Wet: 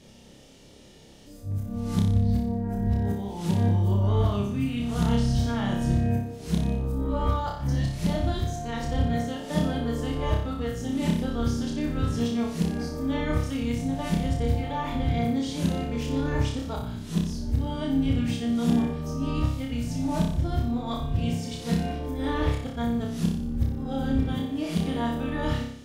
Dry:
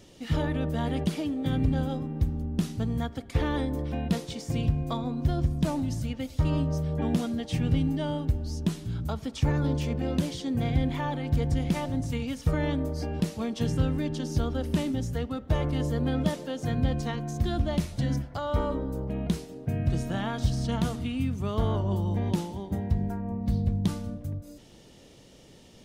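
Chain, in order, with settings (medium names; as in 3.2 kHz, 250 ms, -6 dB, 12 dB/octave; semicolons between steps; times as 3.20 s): reverse the whole clip; flutter echo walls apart 5.1 m, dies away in 0.63 s; trim -1 dB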